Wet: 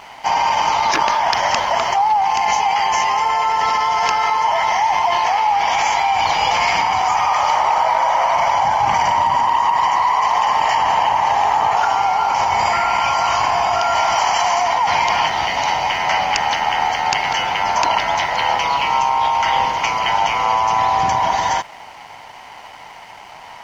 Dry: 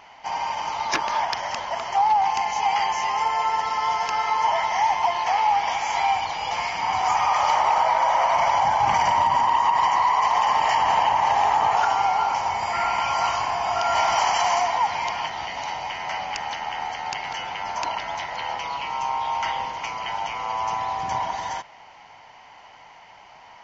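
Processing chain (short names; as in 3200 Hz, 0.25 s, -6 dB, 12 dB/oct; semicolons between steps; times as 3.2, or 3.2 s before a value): in parallel at +0.5 dB: negative-ratio compressor -27 dBFS, ratio -0.5; on the sum: crossover distortion -49 dBFS; gain +3 dB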